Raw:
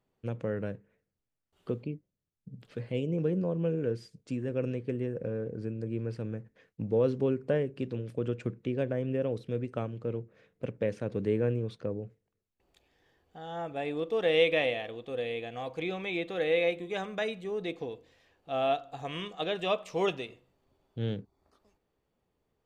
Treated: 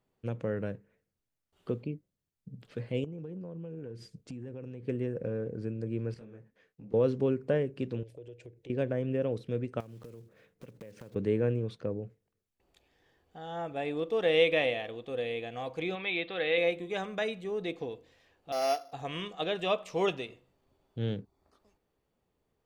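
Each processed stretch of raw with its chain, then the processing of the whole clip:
0:03.04–0:04.83: low-shelf EQ 390 Hz +5 dB + downward compressor 10 to 1, threshold −38 dBFS
0:06.14–0:06.94: low-shelf EQ 150 Hz −6.5 dB + downward compressor 5 to 1, threshold −41 dBFS + micro pitch shift up and down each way 37 cents
0:08.03–0:08.70: phaser with its sweep stopped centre 510 Hz, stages 4 + downward compressor 2.5 to 1, threshold −50 dBFS
0:09.80–0:11.16: one scale factor per block 5 bits + downward compressor 16 to 1, threshold −43 dBFS
0:15.95–0:16.58: Butterworth low-pass 4,500 Hz 48 dB per octave + tilt shelving filter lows −5 dB, about 900 Hz
0:18.52–0:18.93: samples sorted by size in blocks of 8 samples + high-pass filter 360 Hz + high-shelf EQ 5,200 Hz −10.5 dB
whole clip: no processing

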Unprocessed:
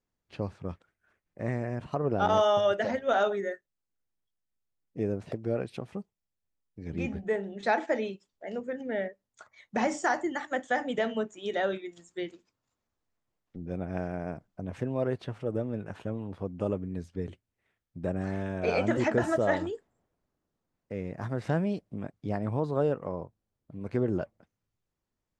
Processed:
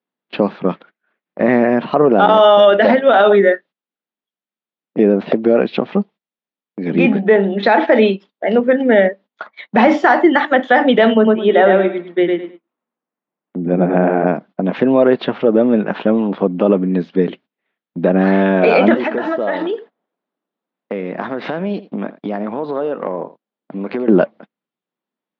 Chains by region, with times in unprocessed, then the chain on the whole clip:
0:11.14–0:14.27: high-frequency loss of the air 460 metres + repeating echo 104 ms, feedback 23%, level −3.5 dB
0:18.94–0:24.08: low-shelf EQ 140 Hz −10.5 dB + downward compressor, threshold −38 dBFS + single-tap delay 84 ms −17 dB
whole clip: noise gate −56 dBFS, range −19 dB; elliptic band-pass filter 200–3,700 Hz, stop band 40 dB; boost into a limiter +23.5 dB; level −1 dB

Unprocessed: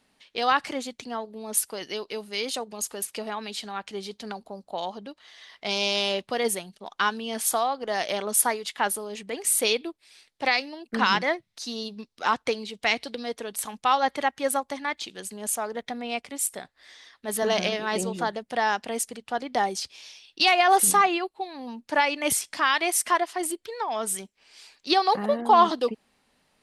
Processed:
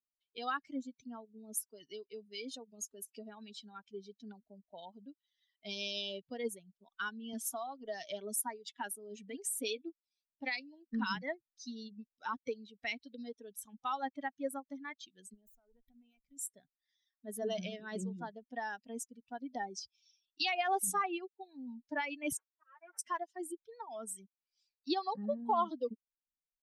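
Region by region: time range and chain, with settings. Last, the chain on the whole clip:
0:07.33–0:09.89: notch filter 490 Hz, Q 13 + multiband upward and downward compressor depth 40%
0:15.34–0:16.37: downward compressor 4 to 1, threshold −40 dBFS + tube saturation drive 39 dB, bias 0.6
0:22.37–0:22.99: lower of the sound and its delayed copy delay 9 ms + flat-topped band-pass 950 Hz, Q 0.84 + volume swells 418 ms
whole clip: spectral dynamics exaggerated over time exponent 2; parametric band 260 Hz +7 dB 0.94 octaves; downward compressor 1.5 to 1, threshold −43 dBFS; level −2.5 dB

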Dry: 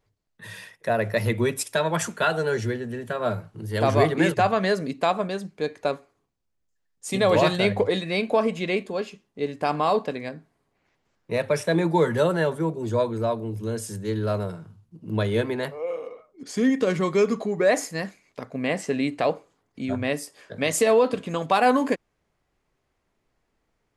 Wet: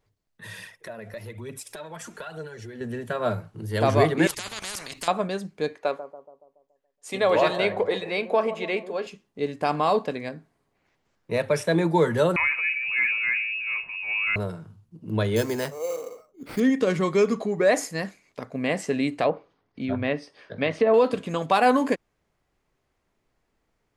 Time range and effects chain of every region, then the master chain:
0:00.59–0:02.81: downward compressor, threshold −37 dBFS + phase shifter 1.1 Hz, delay 4.7 ms, feedback 46%
0:04.27–0:05.08: output level in coarse steps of 13 dB + every bin compressed towards the loudest bin 10 to 1
0:05.75–0:09.07: bass and treble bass −14 dB, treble −8 dB + bucket-brigade delay 141 ms, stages 1,024, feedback 50%, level −12 dB
0:12.36–0:14.36: transient designer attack −7 dB, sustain +7 dB + voice inversion scrambler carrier 2,700 Hz
0:15.36–0:16.60: sample-rate reduction 6,800 Hz + one half of a high-frequency compander decoder only
0:19.24–0:20.94: treble cut that deepens with the level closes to 1,300 Hz, closed at −17 dBFS + Savitzky-Golay smoothing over 15 samples
whole clip: no processing

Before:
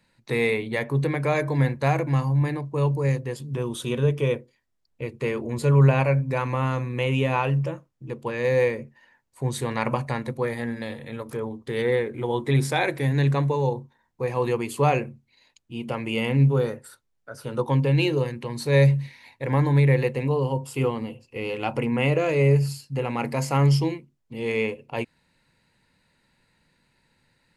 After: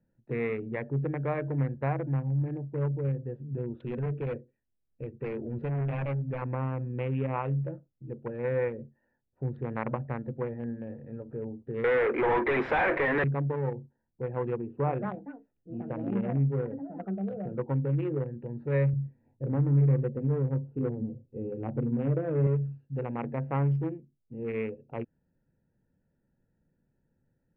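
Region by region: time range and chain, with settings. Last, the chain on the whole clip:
0:03.80–0:06.42: parametric band 3,000 Hz +8 dB 2.1 octaves + gain into a clipping stage and back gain 22.5 dB
0:11.84–0:13.24: high-pass filter 400 Hz + mid-hump overdrive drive 35 dB, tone 7,300 Hz, clips at −10 dBFS + notch filter 4,400 Hz, Q 13
0:14.57–0:18.38: low-pass filter 1,500 Hz 6 dB per octave + delay with pitch and tempo change per echo 290 ms, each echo +6 semitones, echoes 2, each echo −6 dB
0:18.93–0:22.47: tilt shelving filter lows +9.5 dB, about 780 Hz + flanger 1.6 Hz, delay 3.5 ms, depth 5.9 ms, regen −57%
whole clip: adaptive Wiener filter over 41 samples; low-pass filter 2,100 Hz 24 dB per octave; downward compressor 1.5 to 1, threshold −25 dBFS; level −4 dB

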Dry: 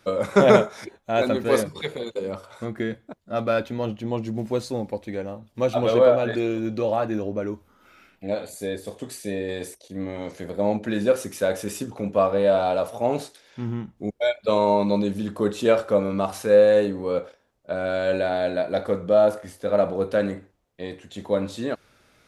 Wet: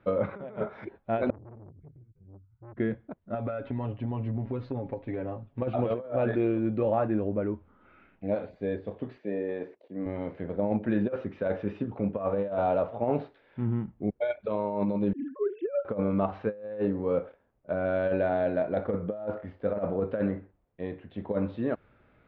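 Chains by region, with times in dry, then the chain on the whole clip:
0:01.30–0:02.77: inverse Chebyshev band-stop filter 250–8,100 Hz + saturating transformer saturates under 810 Hz
0:03.34–0:05.62: comb filter 7.3 ms, depth 78% + downward compressor 16 to 1, threshold −26 dBFS
0:09.18–0:10.06: high-pass filter 240 Hz + parametric band 3,700 Hz −6.5 dB 1.3 octaves
0:15.13–0:15.85: three sine waves on the formant tracks + high-frequency loss of the air 280 metres
whole clip: Bessel low-pass filter 1,800 Hz, order 6; low-shelf EQ 260 Hz +5 dB; compressor whose output falls as the input rises −21 dBFS, ratio −0.5; level −5.5 dB

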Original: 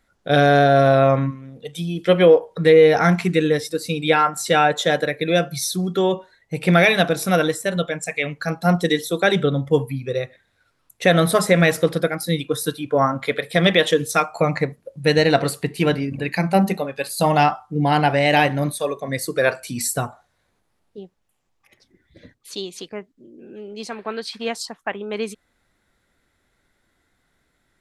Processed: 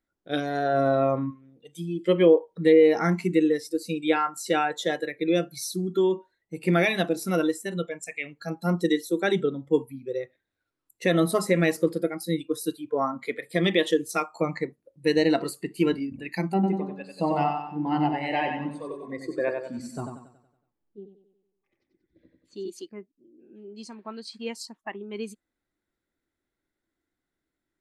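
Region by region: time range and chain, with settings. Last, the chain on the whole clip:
0:16.54–0:22.70: head-to-tape spacing loss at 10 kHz 21 dB + repeating echo 93 ms, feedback 52%, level −4 dB
whole clip: noise reduction from a noise print of the clip's start 11 dB; parametric band 320 Hz +11 dB 0.65 octaves; level −8.5 dB

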